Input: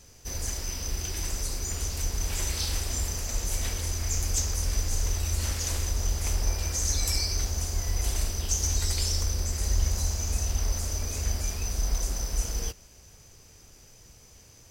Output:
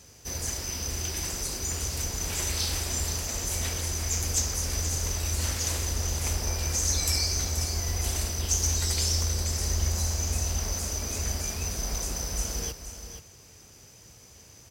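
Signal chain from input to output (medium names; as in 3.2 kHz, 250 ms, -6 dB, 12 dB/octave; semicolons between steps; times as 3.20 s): high-pass 68 Hz; delay 479 ms -10 dB; trim +2 dB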